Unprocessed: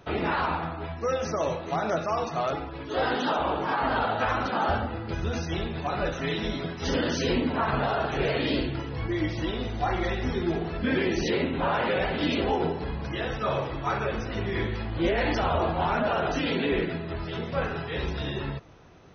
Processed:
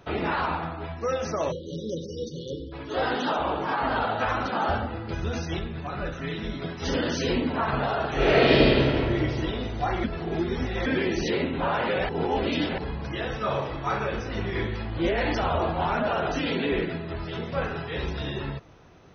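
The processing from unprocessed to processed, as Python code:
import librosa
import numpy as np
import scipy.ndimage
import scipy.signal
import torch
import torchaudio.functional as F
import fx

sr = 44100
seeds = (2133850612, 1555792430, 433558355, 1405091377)

y = fx.spec_erase(x, sr, start_s=1.52, length_s=1.2, low_hz=560.0, high_hz=2900.0)
y = fx.curve_eq(y, sr, hz=(140.0, 860.0, 1300.0, 6300.0), db=(0, -7, -2, -8), at=(5.59, 6.62))
y = fx.reverb_throw(y, sr, start_s=8.13, length_s=0.68, rt60_s=2.4, drr_db=-8.5)
y = fx.doubler(y, sr, ms=34.0, db=-8.0, at=(13.32, 14.6))
y = fx.edit(y, sr, fx.reverse_span(start_s=10.04, length_s=0.82),
    fx.reverse_span(start_s=12.09, length_s=0.69), tone=tone)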